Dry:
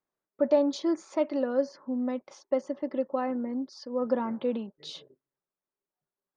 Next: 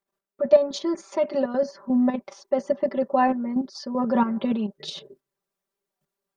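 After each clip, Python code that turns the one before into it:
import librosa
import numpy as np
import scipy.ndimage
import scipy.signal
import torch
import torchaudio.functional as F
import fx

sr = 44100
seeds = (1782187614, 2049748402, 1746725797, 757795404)

y = fx.level_steps(x, sr, step_db=10)
y = y + 0.92 * np.pad(y, (int(5.1 * sr / 1000.0), 0))[:len(y)]
y = fx.rider(y, sr, range_db=4, speed_s=2.0)
y = F.gain(torch.from_numpy(y), 7.0).numpy()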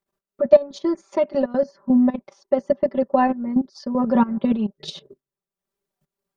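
y = fx.transient(x, sr, attack_db=3, sustain_db=-9)
y = fx.low_shelf(y, sr, hz=200.0, db=9.5)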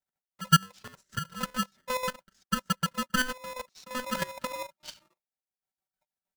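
y = fx.chopper(x, sr, hz=6.4, depth_pct=65, duty_pct=60)
y = fx.fixed_phaser(y, sr, hz=840.0, stages=4)
y = y * np.sign(np.sin(2.0 * np.pi * 760.0 * np.arange(len(y)) / sr))
y = F.gain(torch.from_numpy(y), -6.5).numpy()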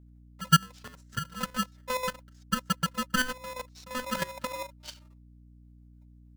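y = fx.add_hum(x, sr, base_hz=60, snr_db=20)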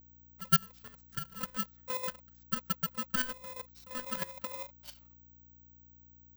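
y = (np.kron(x[::2], np.eye(2)[0]) * 2)[:len(x)]
y = F.gain(torch.from_numpy(y), -8.0).numpy()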